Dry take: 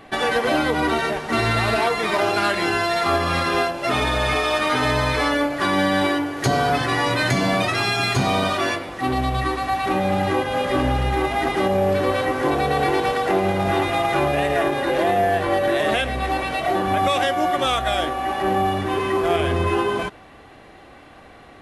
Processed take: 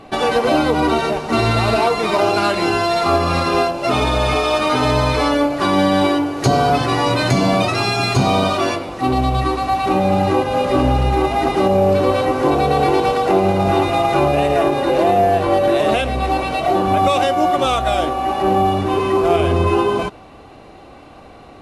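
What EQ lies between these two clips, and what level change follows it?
peaking EQ 1.8 kHz -11 dB 0.56 oct; treble shelf 10 kHz -9.5 dB; band-stop 3.3 kHz, Q 10; +5.5 dB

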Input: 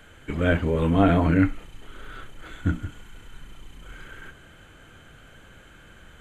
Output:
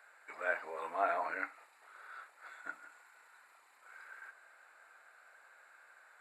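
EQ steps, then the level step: boxcar filter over 14 samples; resonant high-pass 730 Hz, resonance Q 1.6; differentiator; +8.5 dB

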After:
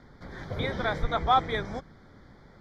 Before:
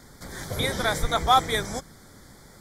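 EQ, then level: distance through air 280 m; -2.0 dB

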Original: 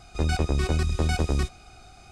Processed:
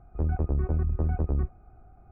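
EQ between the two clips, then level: Gaussian low-pass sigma 6.7 samples; distance through air 140 m; bass shelf 110 Hz +5.5 dB; -5.0 dB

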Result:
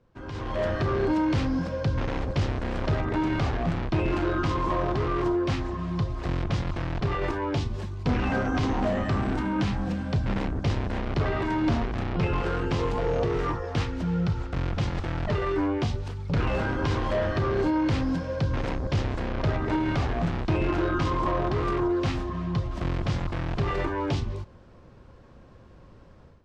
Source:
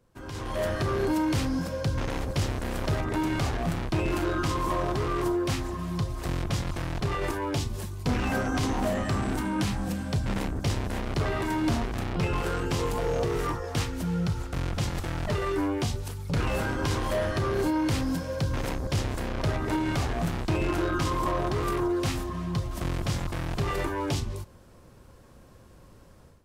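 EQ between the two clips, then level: distance through air 160 m; +2.0 dB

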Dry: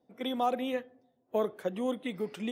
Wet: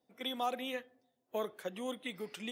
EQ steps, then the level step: tilt shelf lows -6 dB, about 1.2 kHz; -3.5 dB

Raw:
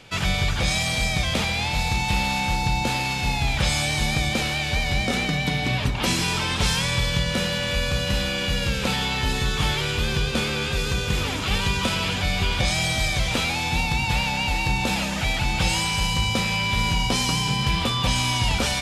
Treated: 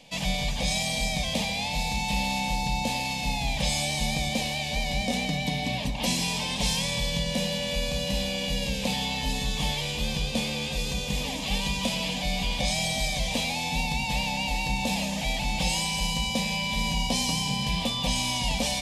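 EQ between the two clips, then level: static phaser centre 370 Hz, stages 6; -1.5 dB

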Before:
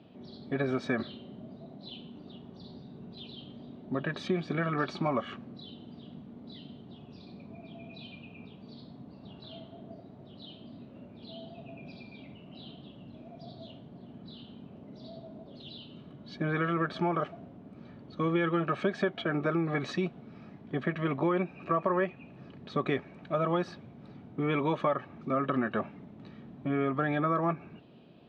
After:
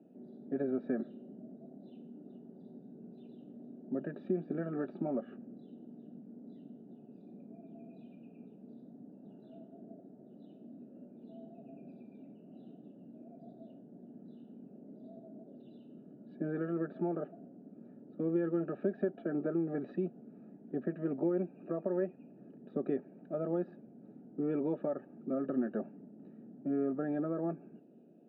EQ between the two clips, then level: boxcar filter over 41 samples; high-pass 200 Hz 24 dB/octave; distance through air 290 m; 0.0 dB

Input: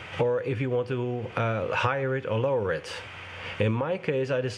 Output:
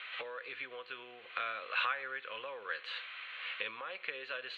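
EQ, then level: resonant high-pass 980 Hz, resonance Q 6.1; four-pole ladder low-pass 4.2 kHz, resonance 90%; static phaser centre 2.2 kHz, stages 4; +5.5 dB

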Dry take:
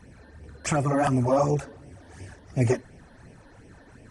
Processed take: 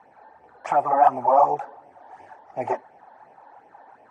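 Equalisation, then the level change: resonant high-pass 820 Hz, resonance Q 6.3; tilt EQ -3.5 dB/octave; treble shelf 3.9 kHz -11.5 dB; 0.0 dB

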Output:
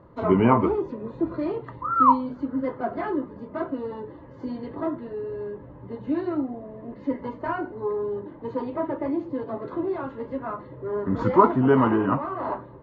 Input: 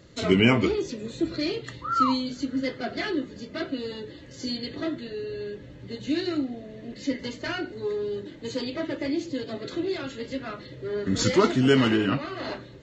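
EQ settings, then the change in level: resonant low-pass 1 kHz, resonance Q 5.3; 0.0 dB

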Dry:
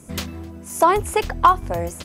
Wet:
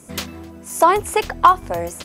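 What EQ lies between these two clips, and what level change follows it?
bass shelf 180 Hz -9.5 dB; +2.5 dB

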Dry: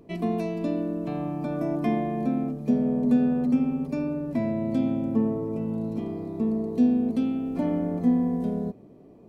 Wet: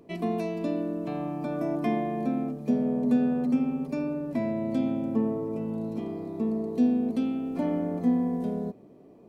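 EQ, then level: bass shelf 140 Hz -9.5 dB; 0.0 dB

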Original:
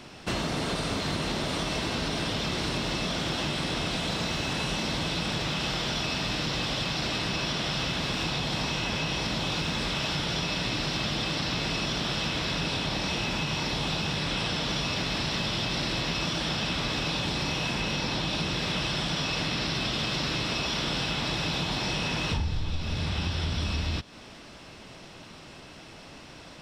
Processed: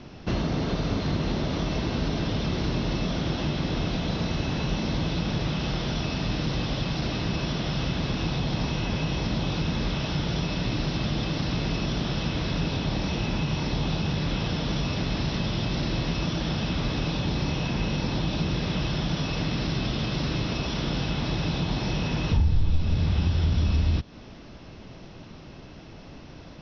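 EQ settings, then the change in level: steep low-pass 6.2 kHz 96 dB/octave; tilt shelf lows +5 dB, about 640 Hz; bass shelf 95 Hz +5 dB; 0.0 dB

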